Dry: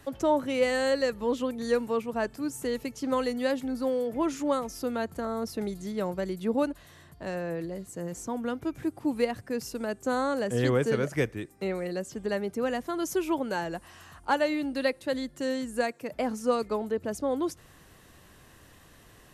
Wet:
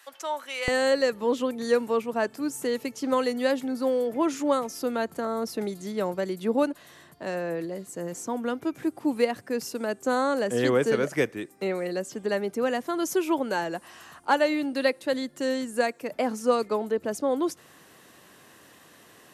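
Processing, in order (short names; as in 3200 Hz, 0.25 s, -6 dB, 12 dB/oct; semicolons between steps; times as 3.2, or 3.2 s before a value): HPF 1200 Hz 12 dB/oct, from 0.68 s 210 Hz; gain +3.5 dB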